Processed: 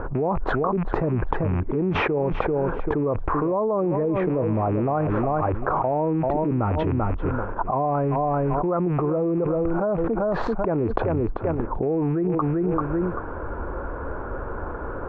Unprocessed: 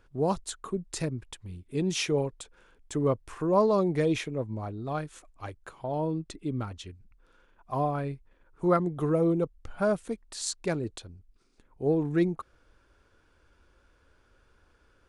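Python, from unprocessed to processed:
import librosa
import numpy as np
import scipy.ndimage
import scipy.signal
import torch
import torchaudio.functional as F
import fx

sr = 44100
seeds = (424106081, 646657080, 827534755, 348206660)

y = fx.rattle_buzz(x, sr, strikes_db=-42.0, level_db=-32.0)
y = scipy.signal.sosfilt(scipy.signal.butter(4, 1100.0, 'lowpass', fs=sr, output='sos'), y)
y = fx.low_shelf(y, sr, hz=370.0, db=-8.5)
y = fx.echo_feedback(y, sr, ms=390, feedback_pct=19, wet_db=-16.0)
y = fx.env_flatten(y, sr, amount_pct=100)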